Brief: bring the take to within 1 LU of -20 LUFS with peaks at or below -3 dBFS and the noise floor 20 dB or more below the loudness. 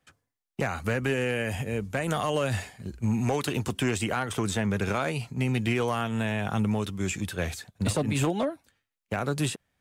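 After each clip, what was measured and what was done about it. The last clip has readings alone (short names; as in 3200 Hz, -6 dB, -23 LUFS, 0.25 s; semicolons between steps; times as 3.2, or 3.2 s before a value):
clipped 0.4%; flat tops at -18.5 dBFS; loudness -29.0 LUFS; peak -18.5 dBFS; loudness target -20.0 LUFS
-> clip repair -18.5 dBFS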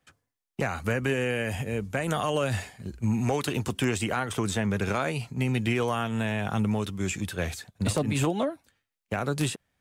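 clipped 0.0%; loudness -28.5 LUFS; peak -9.5 dBFS; loudness target -20.0 LUFS
-> gain +8.5 dB; limiter -3 dBFS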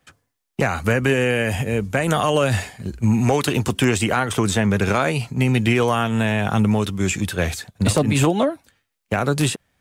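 loudness -20.0 LUFS; peak -3.0 dBFS; noise floor -76 dBFS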